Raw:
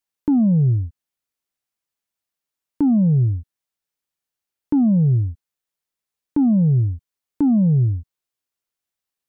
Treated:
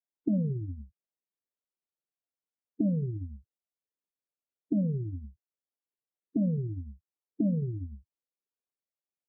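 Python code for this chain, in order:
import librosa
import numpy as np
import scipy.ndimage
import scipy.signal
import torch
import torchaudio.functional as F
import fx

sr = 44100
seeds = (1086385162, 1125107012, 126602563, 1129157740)

y = fx.envelope_sharpen(x, sr, power=2.0)
y = fx.bandpass_q(y, sr, hz=400.0, q=1.2)
y = fx.pitch_keep_formants(y, sr, semitones=-5.0)
y = F.gain(torch.from_numpy(y), -4.0).numpy()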